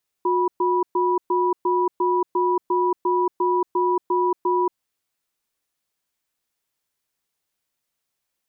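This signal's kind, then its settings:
tone pair in a cadence 361 Hz, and 980 Hz, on 0.23 s, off 0.12 s, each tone −20 dBFS 4.55 s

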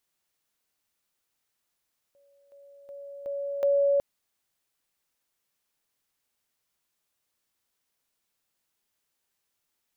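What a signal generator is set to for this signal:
level staircase 563 Hz −59.5 dBFS, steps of 10 dB, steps 5, 0.37 s 0.00 s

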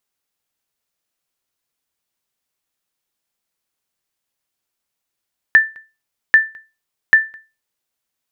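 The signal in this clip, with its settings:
ping with an echo 1,770 Hz, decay 0.28 s, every 0.79 s, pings 3, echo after 0.21 s, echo −29 dB −1.5 dBFS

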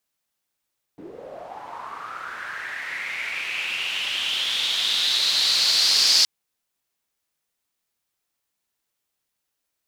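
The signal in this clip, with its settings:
filter sweep on noise pink, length 5.27 s bandpass, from 300 Hz, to 4,800 Hz, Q 5.6, linear, gain ramp +24 dB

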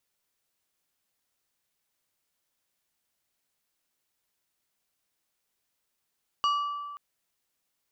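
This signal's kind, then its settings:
struck glass plate, length 0.53 s, lowest mode 1,160 Hz, decay 1.75 s, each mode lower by 8 dB, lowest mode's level −21.5 dB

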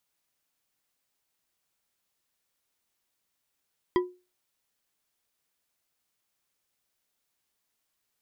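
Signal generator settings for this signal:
struck glass bar, lowest mode 361 Hz, decay 0.30 s, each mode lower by 6 dB, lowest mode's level −17.5 dB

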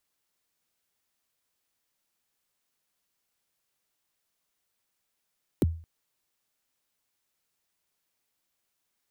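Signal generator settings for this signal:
synth kick length 0.22 s, from 450 Hz, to 82 Hz, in 25 ms, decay 0.41 s, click on, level −16.5 dB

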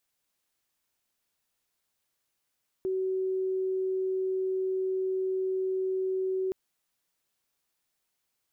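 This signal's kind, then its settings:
tone sine 377 Hz −26.5 dBFS 3.67 s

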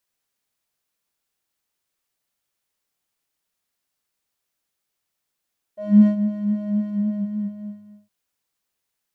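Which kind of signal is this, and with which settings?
subtractive patch with filter wobble G#3, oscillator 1 square, oscillator 2 square, interval +19 semitones, oscillator 2 level −3 dB, sub −21 dB, noise −28 dB, filter bandpass, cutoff 140 Hz, Q 5.7, filter envelope 2 octaves, filter decay 0.15 s, attack 297 ms, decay 0.09 s, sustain −13 dB, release 1.25 s, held 1.07 s, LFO 3.8 Hz, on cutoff 0.2 octaves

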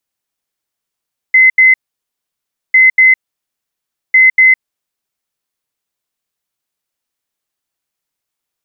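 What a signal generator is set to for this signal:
beeps in groups sine 2,050 Hz, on 0.16 s, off 0.08 s, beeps 2, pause 1.00 s, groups 3, −3 dBFS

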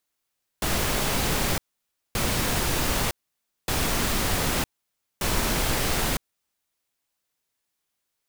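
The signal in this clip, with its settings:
noise bursts pink, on 0.96 s, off 0.57 s, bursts 4, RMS −24.5 dBFS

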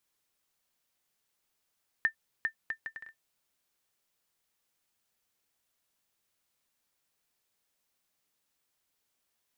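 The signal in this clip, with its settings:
bouncing ball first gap 0.40 s, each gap 0.63, 1,790 Hz, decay 96 ms −16.5 dBFS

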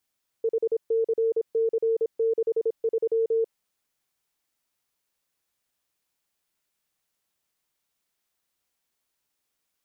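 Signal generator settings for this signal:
Morse code "HCC63" 26 words per minute 452 Hz −20 dBFS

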